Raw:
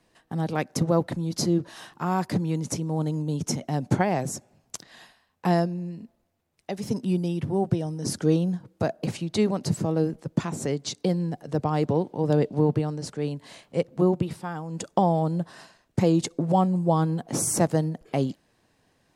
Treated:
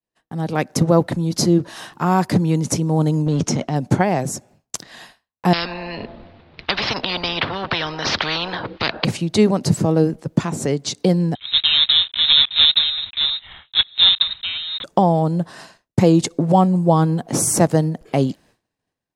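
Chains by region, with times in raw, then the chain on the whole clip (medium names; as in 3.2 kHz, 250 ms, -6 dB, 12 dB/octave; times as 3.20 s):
3.26–3.76 s: companding laws mixed up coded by A + low-pass 5.5 kHz + transient shaper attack -2 dB, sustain +9 dB
5.53–9.05 s: steep low-pass 4.3 kHz 48 dB/octave + spectrum-flattening compressor 10:1
11.35–14.84 s: block-companded coder 3-bit + frequency inversion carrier 3.9 kHz + peaking EQ 420 Hz -11 dB 1.8 oct
whole clip: expander -51 dBFS; level rider gain up to 9.5 dB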